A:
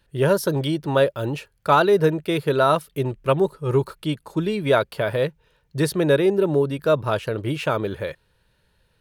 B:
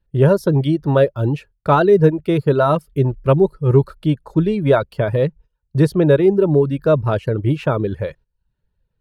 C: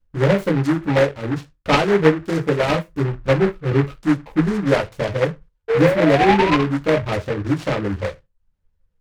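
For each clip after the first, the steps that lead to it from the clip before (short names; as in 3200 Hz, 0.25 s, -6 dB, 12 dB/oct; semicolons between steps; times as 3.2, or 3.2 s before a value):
reverb removal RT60 0.56 s; gate -46 dBFS, range -16 dB; tilt -3 dB/oct; gain +1.5 dB
painted sound rise, 5.68–6.6, 440–1100 Hz -16 dBFS; reverb RT60 0.20 s, pre-delay 3 ms, DRR -0.5 dB; noise-modulated delay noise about 1200 Hz, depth 0.11 ms; gain -6.5 dB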